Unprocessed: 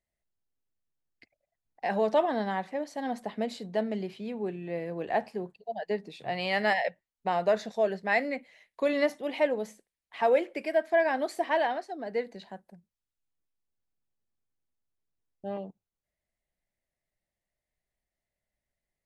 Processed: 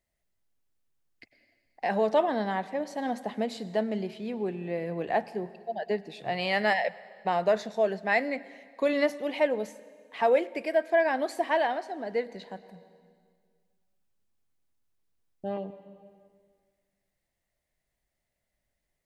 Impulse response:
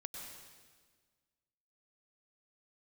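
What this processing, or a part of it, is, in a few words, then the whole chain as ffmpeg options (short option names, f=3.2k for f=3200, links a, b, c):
ducked reverb: -filter_complex "[0:a]asplit=3[a][b][c];[1:a]atrim=start_sample=2205[d];[b][d]afir=irnorm=-1:irlink=0[e];[c]apad=whole_len=840121[f];[e][f]sidechaincompress=threshold=-37dB:ratio=8:attack=8.2:release=1460,volume=3dB[g];[a][g]amix=inputs=2:normalize=0"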